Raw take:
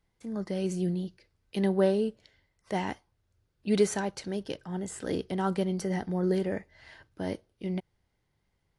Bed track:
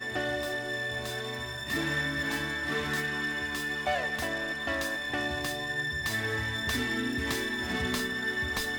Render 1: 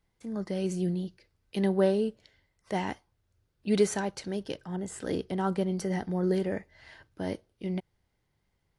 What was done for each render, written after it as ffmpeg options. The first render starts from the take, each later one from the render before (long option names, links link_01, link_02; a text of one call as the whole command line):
ffmpeg -i in.wav -filter_complex "[0:a]asettb=1/sr,asplit=3[link_01][link_02][link_03];[link_01]atrim=end=4.764[link_04];[link_02]atrim=start=4.76:end=5.72,asetpts=PTS-STARTPTS,afade=type=in:duration=0.004:curve=qsin,afade=type=out:start_time=0.956:duration=0.004:curve=qsin,adynamicequalizer=threshold=0.00501:dfrequency=1700:dqfactor=0.7:tfrequency=1700:tqfactor=0.7:attack=5:release=100:ratio=0.375:range=2.5:mode=cutabove:tftype=highshelf[link_05];[link_03]atrim=start=5.716[link_06];[link_04][link_05]acrossfade=duration=0.004:curve1=hsin:curve2=qsin[link_07];[link_07][link_06]acrossfade=duration=0.004:curve1=qsin:curve2=hsin" out.wav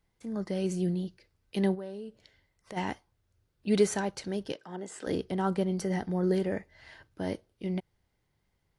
ffmpeg -i in.wav -filter_complex "[0:a]asplit=3[link_01][link_02][link_03];[link_01]afade=type=out:start_time=1.74:duration=0.02[link_04];[link_02]acompressor=threshold=-42dB:ratio=3:attack=3.2:release=140:knee=1:detection=peak,afade=type=in:start_time=1.74:duration=0.02,afade=type=out:start_time=2.76:duration=0.02[link_05];[link_03]afade=type=in:start_time=2.76:duration=0.02[link_06];[link_04][link_05][link_06]amix=inputs=3:normalize=0,asettb=1/sr,asplit=3[link_07][link_08][link_09];[link_07]atrim=end=4.534[link_10];[link_08]atrim=start=4.53:end=5.07,asetpts=PTS-STARTPTS,afade=type=in:duration=0.004:curve=qsin,afade=type=out:start_time=0.536:duration=0.004:curve=qsin,highpass=300,lowpass=7900[link_11];[link_09]atrim=start=5.066[link_12];[link_10][link_11]acrossfade=duration=0.004:curve1=hsin:curve2=qsin[link_13];[link_13][link_12]acrossfade=duration=0.004:curve1=qsin:curve2=hsin" out.wav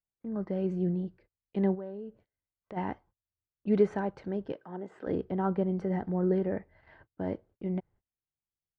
ffmpeg -i in.wav -af "lowpass=1400,agate=range=-26dB:threshold=-57dB:ratio=16:detection=peak" out.wav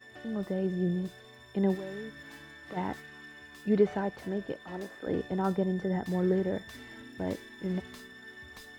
ffmpeg -i in.wav -i bed.wav -filter_complex "[1:a]volume=-17dB[link_01];[0:a][link_01]amix=inputs=2:normalize=0" out.wav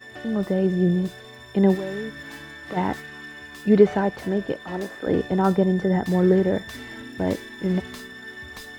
ffmpeg -i in.wav -af "volume=9.5dB" out.wav